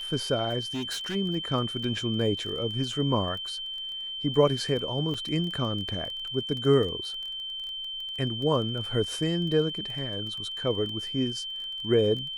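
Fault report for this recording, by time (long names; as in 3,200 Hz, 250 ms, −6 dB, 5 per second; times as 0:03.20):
surface crackle 21 per second −34 dBFS
whistle 3,100 Hz −33 dBFS
0:00.74–0:01.16: clipping −28.5 dBFS
0:05.14: drop-out 4.8 ms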